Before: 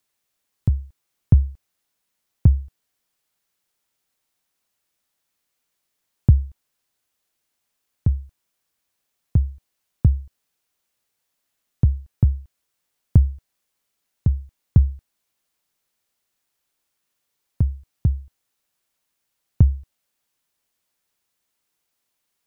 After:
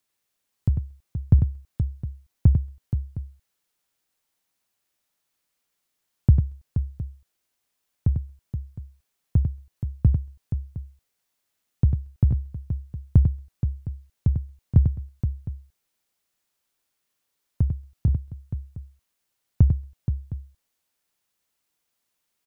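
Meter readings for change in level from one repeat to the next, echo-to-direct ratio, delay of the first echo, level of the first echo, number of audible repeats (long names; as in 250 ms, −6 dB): repeats not evenly spaced, −4.5 dB, 97 ms, −7.0 dB, 3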